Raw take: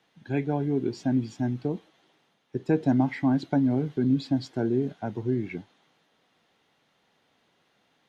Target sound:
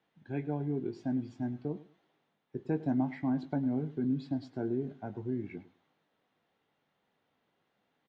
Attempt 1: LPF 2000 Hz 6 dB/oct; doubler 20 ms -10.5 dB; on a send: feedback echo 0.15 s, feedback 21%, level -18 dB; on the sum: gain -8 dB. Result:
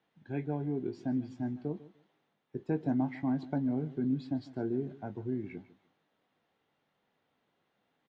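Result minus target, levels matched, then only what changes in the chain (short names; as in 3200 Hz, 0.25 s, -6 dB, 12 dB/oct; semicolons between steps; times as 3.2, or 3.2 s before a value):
echo 46 ms late
change: feedback echo 0.104 s, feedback 21%, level -18 dB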